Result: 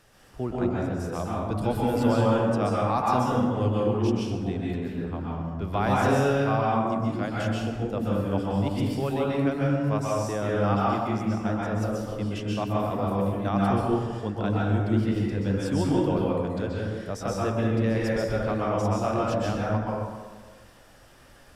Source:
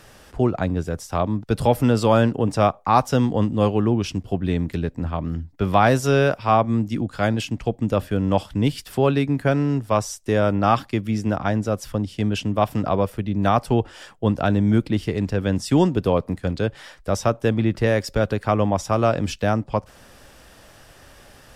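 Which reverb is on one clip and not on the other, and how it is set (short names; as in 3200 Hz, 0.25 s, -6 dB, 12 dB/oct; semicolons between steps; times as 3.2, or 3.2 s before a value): plate-style reverb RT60 1.5 s, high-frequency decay 0.5×, pre-delay 0.115 s, DRR -5 dB; gain -11.5 dB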